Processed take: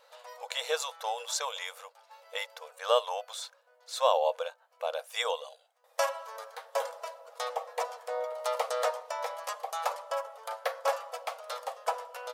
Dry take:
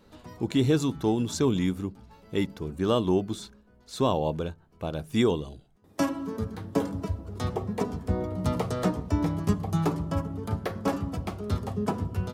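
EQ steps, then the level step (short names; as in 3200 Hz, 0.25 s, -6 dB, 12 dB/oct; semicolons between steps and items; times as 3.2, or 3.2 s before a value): brick-wall FIR high-pass 470 Hz; +2.5 dB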